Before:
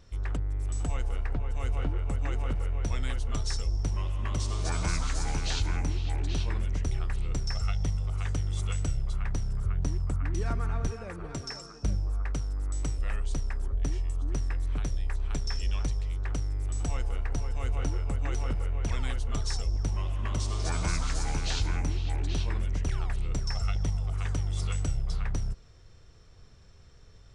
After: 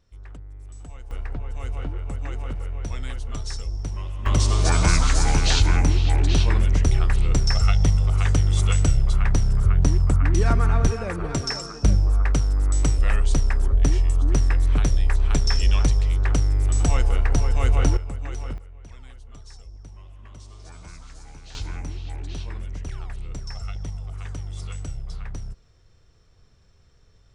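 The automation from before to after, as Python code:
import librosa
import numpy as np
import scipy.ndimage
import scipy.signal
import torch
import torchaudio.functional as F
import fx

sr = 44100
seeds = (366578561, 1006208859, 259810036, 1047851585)

y = fx.gain(x, sr, db=fx.steps((0.0, -9.5), (1.11, 0.0), (4.26, 11.0), (17.97, -1.0), (18.58, -13.5), (21.55, -3.0)))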